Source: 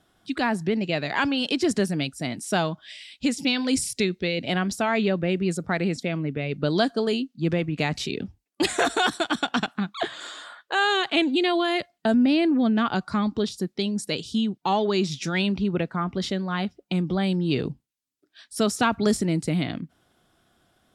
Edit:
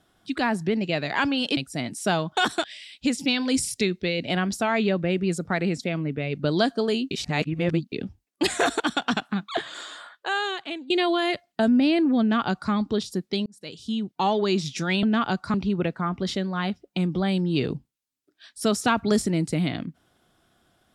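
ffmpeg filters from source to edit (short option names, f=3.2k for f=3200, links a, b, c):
-filter_complex "[0:a]asplit=11[a][b][c][d][e][f][g][h][i][j][k];[a]atrim=end=1.572[l];[b]atrim=start=2.028:end=2.832[m];[c]atrim=start=8.988:end=9.262[n];[d]atrim=start=2.828:end=7.302[o];[e]atrim=start=7.298:end=8.112,asetpts=PTS-STARTPTS,areverse[p];[f]atrim=start=8.108:end=8.992[q];[g]atrim=start=9.258:end=11.36,asetpts=PTS-STARTPTS,afade=t=out:st=1.162:d=0.94:silence=0.0944061[r];[h]atrim=start=11.36:end=13.92,asetpts=PTS-STARTPTS,afade=t=in:d=0.004:c=hsin:silence=0.0944061,afade=t=out:st=2.556:d=0.004:c=hsin[s];[i]atrim=start=13.92:end=15.492,asetpts=PTS-STARTPTS,afade=t=in:d=0.73[t];[j]atrim=start=12.668:end=13.182[u];[k]atrim=start=15.488[v];[l][m]acrossfade=d=0.004:c1=hsin:c2=hsin[w];[w][n]acrossfade=d=0.004:c1=hsin:c2=hsin[x];[x][o]acrossfade=d=0.004:c1=hsin:c2=hsin[y];[y][p]acrossfade=d=0.004:c1=hsin:c2=hsin[z];[z][q]acrossfade=d=0.004:c1=hsin:c2=hsin[aa];[r][s][t]concat=n=3:v=0:a=1[ab];[aa][ab]acrossfade=d=0.004:c1=hsin:c2=hsin[ac];[ac][u]acrossfade=d=0.004:c1=hsin:c2=hsin[ad];[ad][v]acrossfade=d=0.004:c1=hsin:c2=hsin"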